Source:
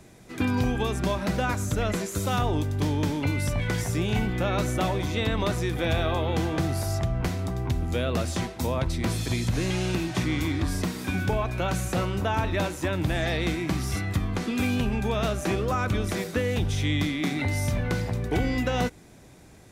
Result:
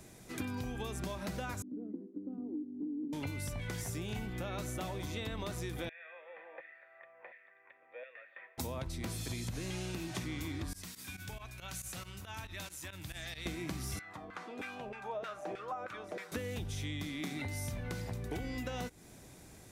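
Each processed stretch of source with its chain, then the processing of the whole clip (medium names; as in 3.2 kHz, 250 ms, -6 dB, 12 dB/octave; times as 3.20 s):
1.62–3.13 s: Butterworth band-pass 290 Hz, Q 2.8 + comb 4 ms, depth 51%
5.89–8.58 s: LFO high-pass saw down 1.4 Hz 870–1900 Hz + cascade formant filter e
10.73–13.46 s: volume shaper 138 bpm, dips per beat 2, -18 dB, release 62 ms + amplifier tone stack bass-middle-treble 5-5-5
13.99–16.32 s: treble shelf 3.9 kHz +5.5 dB + comb 6.5 ms, depth 32% + LFO band-pass saw down 3.2 Hz 490–1700 Hz
whole clip: treble shelf 6.1 kHz +8.5 dB; compression, threshold -32 dBFS; trim -4.5 dB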